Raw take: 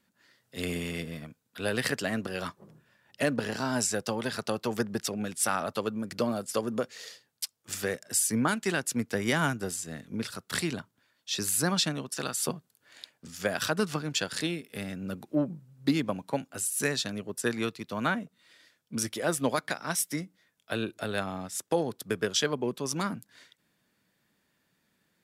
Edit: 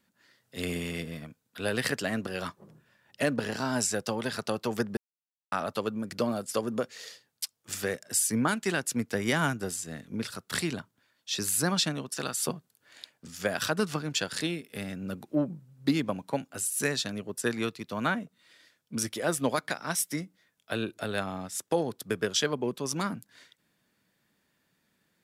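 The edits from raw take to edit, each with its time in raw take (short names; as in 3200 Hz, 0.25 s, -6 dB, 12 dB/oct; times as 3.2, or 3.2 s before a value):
4.97–5.52 mute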